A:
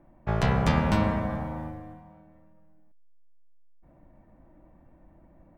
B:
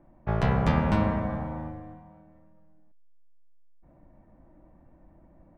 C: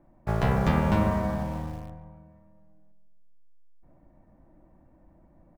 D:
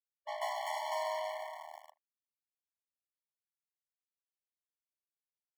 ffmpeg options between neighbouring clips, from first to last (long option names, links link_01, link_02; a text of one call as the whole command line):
ffmpeg -i in.wav -af "highshelf=frequency=3900:gain=-12" out.wav
ffmpeg -i in.wav -filter_complex "[0:a]asplit=2[link_01][link_02];[link_02]acrusher=bits=5:mix=0:aa=0.000001,volume=-11.5dB[link_03];[link_01][link_03]amix=inputs=2:normalize=0,asplit=2[link_04][link_05];[link_05]adelay=142,lowpass=frequency=1300:poles=1,volume=-10.5dB,asplit=2[link_06][link_07];[link_07]adelay=142,lowpass=frequency=1300:poles=1,volume=0.55,asplit=2[link_08][link_09];[link_09]adelay=142,lowpass=frequency=1300:poles=1,volume=0.55,asplit=2[link_10][link_11];[link_11]adelay=142,lowpass=frequency=1300:poles=1,volume=0.55,asplit=2[link_12][link_13];[link_13]adelay=142,lowpass=frequency=1300:poles=1,volume=0.55,asplit=2[link_14][link_15];[link_15]adelay=142,lowpass=frequency=1300:poles=1,volume=0.55[link_16];[link_04][link_06][link_08][link_10][link_12][link_14][link_16]amix=inputs=7:normalize=0,volume=-2dB" out.wav
ffmpeg -i in.wav -af "acrusher=bits=4:mix=0:aa=0.5,afftfilt=real='re*eq(mod(floor(b*sr/1024/580),2),1)':imag='im*eq(mod(floor(b*sr/1024/580),2),1)':win_size=1024:overlap=0.75,volume=-5.5dB" out.wav